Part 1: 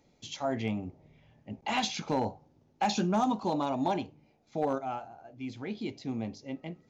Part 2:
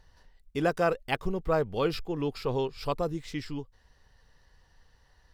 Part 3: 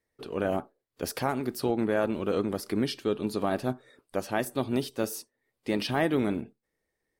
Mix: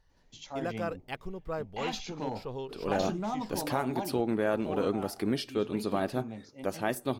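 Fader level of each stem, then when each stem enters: -6.5 dB, -9.0 dB, -2.0 dB; 0.10 s, 0.00 s, 2.50 s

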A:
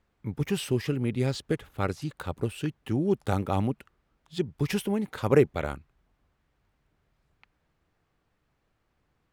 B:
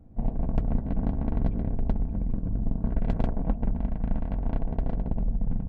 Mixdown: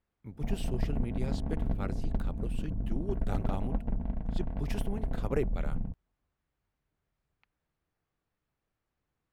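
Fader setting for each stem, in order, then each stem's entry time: -11.0 dB, -5.5 dB; 0.00 s, 0.25 s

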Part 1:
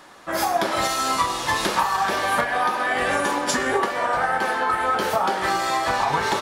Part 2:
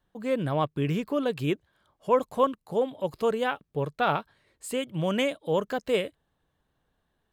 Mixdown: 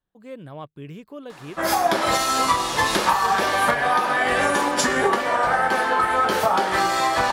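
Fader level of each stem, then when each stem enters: +2.0 dB, -10.5 dB; 1.30 s, 0.00 s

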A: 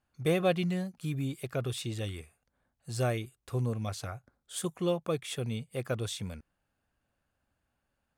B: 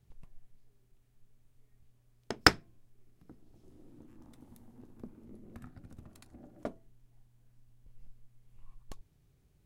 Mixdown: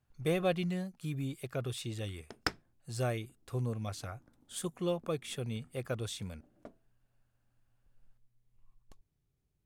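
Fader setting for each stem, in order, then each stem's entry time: -3.5 dB, -12.0 dB; 0.00 s, 0.00 s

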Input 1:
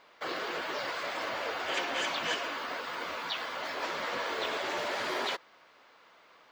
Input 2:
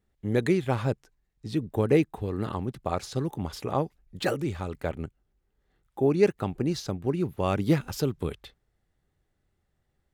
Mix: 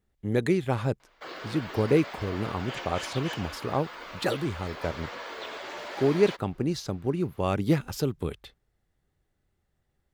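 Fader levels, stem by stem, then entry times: -5.0 dB, -0.5 dB; 1.00 s, 0.00 s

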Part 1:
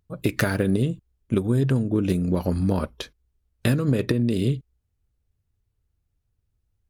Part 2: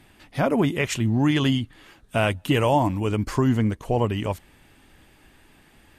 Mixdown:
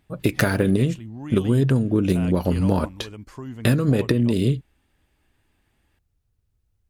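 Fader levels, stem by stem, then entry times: +2.5 dB, -15.0 dB; 0.00 s, 0.00 s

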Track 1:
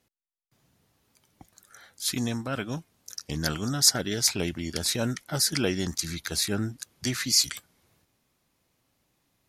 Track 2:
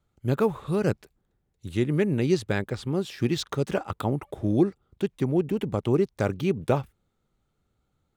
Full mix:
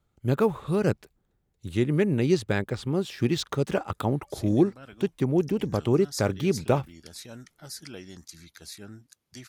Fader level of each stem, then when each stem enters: -15.5 dB, +0.5 dB; 2.30 s, 0.00 s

